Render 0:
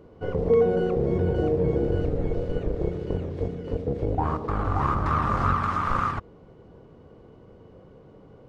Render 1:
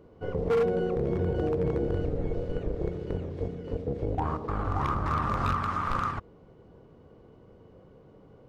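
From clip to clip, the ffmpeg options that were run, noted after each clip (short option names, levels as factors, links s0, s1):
-af "aeval=exprs='0.178*(abs(mod(val(0)/0.178+3,4)-2)-1)':c=same,volume=0.631"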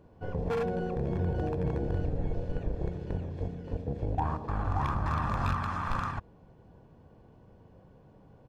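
-af "aecho=1:1:1.2:0.44,volume=0.75"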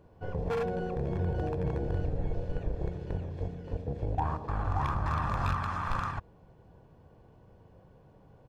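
-af "equalizer=f=240:w=1.8:g=-4.5"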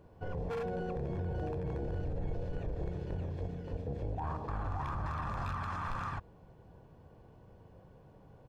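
-af "alimiter=level_in=1.88:limit=0.0631:level=0:latency=1:release=24,volume=0.531"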